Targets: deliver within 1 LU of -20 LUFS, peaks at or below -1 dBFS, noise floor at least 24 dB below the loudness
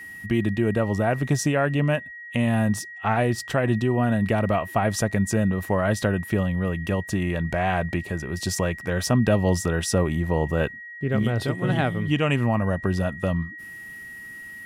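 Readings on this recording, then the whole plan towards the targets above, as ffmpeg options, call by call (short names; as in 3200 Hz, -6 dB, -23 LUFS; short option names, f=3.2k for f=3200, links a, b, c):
steady tone 1900 Hz; tone level -37 dBFS; loudness -24.0 LUFS; peak -9.0 dBFS; loudness target -20.0 LUFS
-> -af "bandreject=f=1.9k:w=30"
-af "volume=4dB"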